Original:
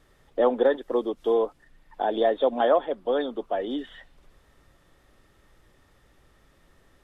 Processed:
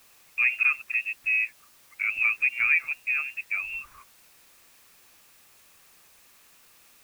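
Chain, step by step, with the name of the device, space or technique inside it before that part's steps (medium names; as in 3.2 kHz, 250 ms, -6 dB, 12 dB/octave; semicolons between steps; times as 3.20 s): scrambled radio voice (band-pass 310–2900 Hz; frequency inversion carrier 3 kHz; white noise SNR 27 dB); trim -2 dB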